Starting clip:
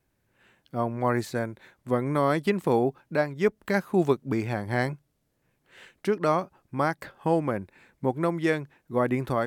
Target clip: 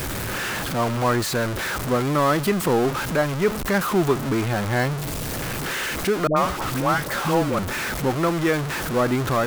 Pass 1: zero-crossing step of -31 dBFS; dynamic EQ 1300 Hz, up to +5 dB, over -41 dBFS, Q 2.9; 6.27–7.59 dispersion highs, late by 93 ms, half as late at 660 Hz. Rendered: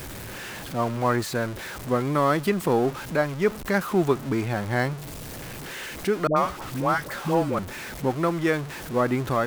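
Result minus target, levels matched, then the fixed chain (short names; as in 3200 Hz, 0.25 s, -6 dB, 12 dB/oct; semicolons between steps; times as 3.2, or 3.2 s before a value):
zero-crossing step: distortion -7 dB
zero-crossing step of -22 dBFS; dynamic EQ 1300 Hz, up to +5 dB, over -41 dBFS, Q 2.9; 6.27–7.59 dispersion highs, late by 93 ms, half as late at 660 Hz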